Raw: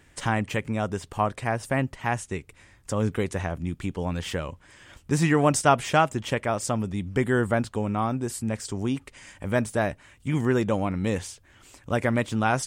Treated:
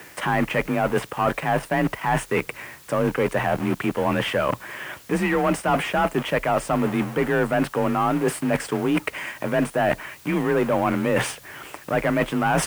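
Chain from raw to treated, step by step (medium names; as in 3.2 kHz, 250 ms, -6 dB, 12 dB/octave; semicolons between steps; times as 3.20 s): in parallel at -3 dB: word length cut 6-bit, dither none; on the sum: overdrive pedal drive 24 dB, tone 1.5 kHz, clips at -1.5 dBFS; high-order bell 5.2 kHz -9 dB 1.3 oct; reverse; compression, threshold -24 dBFS, peak gain reduction 15.5 dB; reverse; added noise white -53 dBFS; frequency shift +31 Hz; trim +4 dB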